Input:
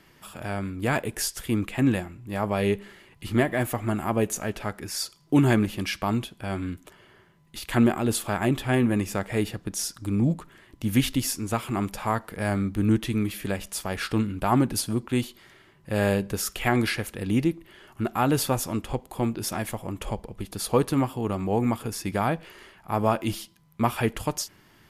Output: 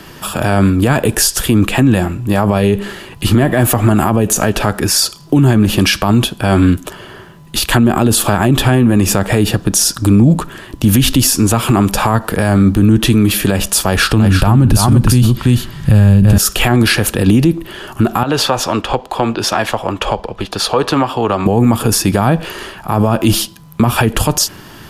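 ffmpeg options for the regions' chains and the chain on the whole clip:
ffmpeg -i in.wav -filter_complex "[0:a]asettb=1/sr,asplit=3[link_01][link_02][link_03];[link_01]atrim=end=13.864[link_04];[link_02]atrim=start=13.86:end=16.38,asetpts=PTS-STARTPTS,afade=type=in:duration=0.004:curve=qsin,afade=type=out:start_time=2.516:duration=0.004:curve=qsin,asubboost=boost=10:cutoff=170,aecho=1:1:337:0.501,atrim=end_sample=111132[link_05];[link_03]atrim=start=16.376[link_06];[link_04][link_05]acrossfade=duration=0.004:curve1=hsin:curve2=qsin[link_07];[link_07][link_06]acrossfade=duration=0.004:curve1=qsin:curve2=hsin,asettb=1/sr,asplit=3[link_08][link_09][link_10];[link_08]atrim=end=18.234[link_11];[link_09]atrim=start=18.23:end=21.46,asetpts=PTS-STARTPTS,afade=type=in:duration=0.004:curve=qsin,afade=type=out:start_time=3.226:duration=0.004:curve=qsin,acrossover=split=460 5400:gain=0.251 1 0.112[link_12][link_13][link_14];[link_12][link_13][link_14]amix=inputs=3:normalize=0,acompressor=threshold=-31dB:ratio=2.5:attack=3.2:release=140:knee=1:detection=peak[link_15];[link_10]atrim=start=21.456[link_16];[link_11][link_15]acrossfade=duration=0.004:curve1=hsin:curve2=qsin[link_17];[link_17][link_16]acrossfade=duration=0.004:curve1=qsin:curve2=hsin,equalizer=frequency=2100:width_type=o:width=0.22:gain=-10,acrossover=split=220[link_18][link_19];[link_19]acompressor=threshold=-26dB:ratio=6[link_20];[link_18][link_20]amix=inputs=2:normalize=0,alimiter=level_in=23dB:limit=-1dB:release=50:level=0:latency=1,volume=-1dB" out.wav

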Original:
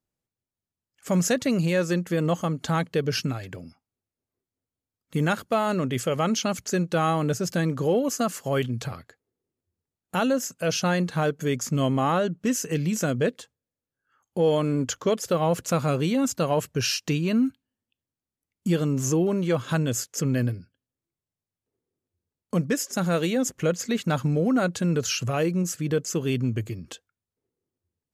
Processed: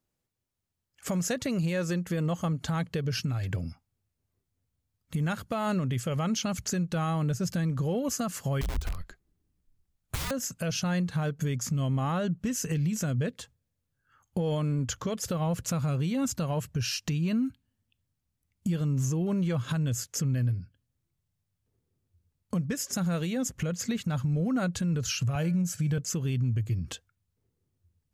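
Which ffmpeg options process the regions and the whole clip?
ffmpeg -i in.wav -filter_complex "[0:a]asettb=1/sr,asplit=3[link_01][link_02][link_03];[link_01]atrim=end=8.614[link_04];[link_02]atrim=start=8.61:end=10.31,asetpts=PTS-STARTPTS,afade=type=in:duration=0.004:curve=qsin,afade=type=out:start_time=1.696:duration=0.004:curve=qsin,aeval=exprs='(mod(18.8*val(0)+1,2)-1)/18.8':channel_layout=same,afreqshift=-76[link_05];[link_03]atrim=start=10.306[link_06];[link_04][link_05]acrossfade=duration=0.004:curve1=hsin:curve2=qsin[link_07];[link_07][link_06]acrossfade=duration=0.004:curve1=qsin:curve2=hsin,asettb=1/sr,asplit=3[link_08][link_09][link_10];[link_08]atrim=end=25.354[link_11];[link_09]atrim=start=25.35:end=25.98,asetpts=PTS-STARTPTS,afade=type=in:duration=0.004:curve=qsin,afade=type=out:start_time=0.626:duration=0.004:curve=qsin,highpass=frequency=85:width=0.5412,highpass=frequency=85:width=1.3066,aecho=1:1:1.3:0.43,atrim=end_sample=27783,bandreject=frequency=288.1:width_type=h:width=4,bandreject=frequency=576.2:width_type=h:width=4,bandreject=frequency=864.3:width_type=h:width=4,bandreject=frequency=1152.4:width_type=h:width=4,bandreject=frequency=1440.5:width_type=h:width=4,bandreject=frequency=1728.6:width_type=h:width=4,bandreject=frequency=2016.7:width_type=h:width=4,bandreject=frequency=2304.8:width_type=h:width=4,bandreject=frequency=2592.9:width_type=h:width=4,bandreject=frequency=2881:width_type=h:width=4,bandreject=frequency=3169.1:width_type=h:width=4,bandreject=frequency=3457.2:width_type=h:width=4,bandreject=frequency=3745.3:width_type=h:width=4,bandreject=frequency=4033.4:width_type=h:width=4,bandreject=frequency=4321.5:width_type=h:width=4,bandreject=frequency=4609.6:width_type=h:width=4,bandreject=frequency=4897.7:width_type=h:width=4,bandreject=frequency=5185.8:width_type=h:width=4,bandreject=frequency=5473.9:width_type=h:width=4,bandreject=frequency=5762:width_type=h:width=4,bandreject=frequency=6050.1:width_type=h:width=4,bandreject=frequency=6338.2:width_type=h:width=4,bandreject=frequency=6626.3:width_type=h:width=4,bandreject=frequency=6914.4:width_type=h:width=4,bandreject=frequency=7202.5:width_type=h:width=4,bandreject=frequency=7490.6:width_type=h:width=4,bandreject=frequency=7778.7:width_type=h:width=4,bandreject=frequency=8066.8:width_type=h:width=4,bandreject=frequency=8354.9:width_type=h:width=4,bandreject=frequency=8643:width_type=h:width=4,bandreject=frequency=8931.1:width_type=h:width=4,bandreject=frequency=9219.2:width_type=h:width=4,bandreject=frequency=9507.3:width_type=h:width=4,bandreject=frequency=9795.4:width_type=h:width=4,bandreject=frequency=10083.5:width_type=h:width=4,bandreject=frequency=10371.6:width_type=h:width=4,bandreject=frequency=10659.7:width_type=h:width=4[link_12];[link_10]atrim=start=25.976[link_13];[link_11][link_12]acrossfade=duration=0.004:curve1=hsin:curve2=qsin[link_14];[link_14][link_13]acrossfade=duration=0.004:curve1=qsin:curve2=hsin,asubboost=boost=5.5:cutoff=140,acompressor=threshold=-30dB:ratio=3,alimiter=level_in=0.5dB:limit=-24dB:level=0:latency=1:release=187,volume=-0.5dB,volume=3.5dB" out.wav

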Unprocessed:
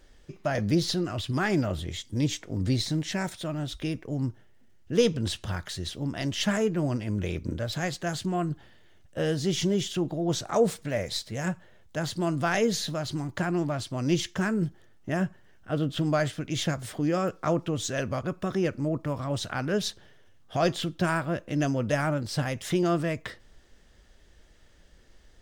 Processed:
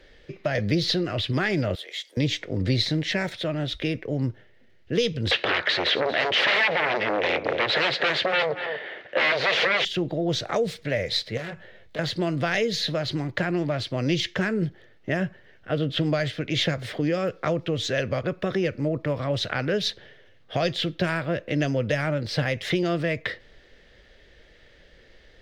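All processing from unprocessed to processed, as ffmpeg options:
ffmpeg -i in.wav -filter_complex "[0:a]asettb=1/sr,asplit=3[link_01][link_02][link_03];[link_01]atrim=end=1.754[link_04];[link_02]atrim=start=1.75:end=2.17,asetpts=PTS-STARTPTS,afade=type=in:duration=0.004:curve=qsin,afade=type=out:start_time=0.416:duration=0.004:curve=qsin,acompressor=threshold=-44dB:ratio=1.5:attack=3.2:release=140:knee=1:detection=peak,highpass=frequency=520:width=0.5412,highpass=frequency=520:width=1.3066,equalizer=frequency=12000:width_type=o:width=1.1:gain=12[link_05];[link_03]atrim=start=2.166[link_06];[link_04][link_05]acrossfade=duration=0.004:curve1=hsin:curve2=qsin[link_07];[link_07][link_06]acrossfade=duration=0.004:curve1=qsin:curve2=hsin,asettb=1/sr,asplit=3[link_08][link_09][link_10];[link_08]atrim=end=5.314[link_11];[link_09]atrim=start=5.31:end=9.85,asetpts=PTS-STARTPTS,afade=type=in:duration=0.004:curve=qsin,afade=type=out:start_time=4.536:duration=0.004:curve=qsin,aeval=exprs='0.211*sin(PI/2*7.94*val(0)/0.211)':channel_layout=same,highpass=500,lowpass=2100,aecho=1:1:234:0.168,atrim=end_sample=200214[link_12];[link_10]atrim=start=9.846[link_13];[link_11][link_12]acrossfade=duration=0.004:curve1=hsin:curve2=qsin[link_14];[link_14][link_13]acrossfade=duration=0.004:curve1=qsin:curve2=hsin,asettb=1/sr,asplit=3[link_15][link_16][link_17];[link_15]atrim=end=11.374[link_18];[link_16]atrim=start=11.37:end=11.99,asetpts=PTS-STARTPTS,afade=type=in:duration=0.004:curve=qsin,afade=type=out:start_time=0.616:duration=0.004:curve=qsin,asplit=2[link_19][link_20];[link_20]adelay=19,volume=-4.5dB[link_21];[link_19][link_21]amix=inputs=2:normalize=0,atrim=end_sample=27342,acompressor=threshold=-37dB:ratio=3:attack=3.2:release=140:knee=1:detection=peak,aeval=exprs='0.0178*(abs(mod(val(0)/0.0178+3,4)-2)-1)':channel_layout=same[link_22];[link_17]atrim=start=11.986[link_23];[link_18][link_22]acrossfade=duration=0.004:curve1=hsin:curve2=qsin[link_24];[link_24][link_23]acrossfade=duration=0.004:curve1=qsin:curve2=hsin,equalizer=frequency=125:width_type=o:width=1:gain=3,equalizer=frequency=500:width_type=o:width=1:gain=11,equalizer=frequency=1000:width_type=o:width=1:gain=-3,equalizer=frequency=2000:width_type=o:width=1:gain=11,equalizer=frequency=4000:width_type=o:width=1:gain=8,equalizer=frequency=8000:width_type=o:width=1:gain=-8,acrossover=split=170|3000[link_25][link_26][link_27];[link_26]acompressor=threshold=-23dB:ratio=6[link_28];[link_25][link_28][link_27]amix=inputs=3:normalize=0,highshelf=frequency=12000:gain=-9.5" out.wav

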